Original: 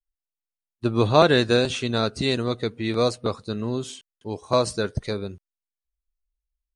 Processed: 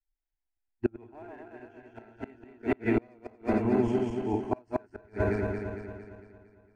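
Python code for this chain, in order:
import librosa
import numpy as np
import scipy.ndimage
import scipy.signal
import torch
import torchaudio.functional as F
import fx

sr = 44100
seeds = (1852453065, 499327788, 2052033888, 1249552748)

p1 = fx.reverse_delay_fb(x, sr, ms=114, feedback_pct=74, wet_db=-0.5)
p2 = scipy.signal.sosfilt(scipy.signal.butter(2, 2200.0, 'lowpass', fs=sr, output='sos'), p1)
p3 = fx.gate_flip(p2, sr, shuts_db=-11.0, range_db=-30)
p4 = np.sign(p3) * np.maximum(np.abs(p3) - 10.0 ** (-43.0 / 20.0), 0.0)
p5 = p3 + (p4 * 10.0 ** (-8.0 / 20.0))
y = fx.fixed_phaser(p5, sr, hz=780.0, stages=8)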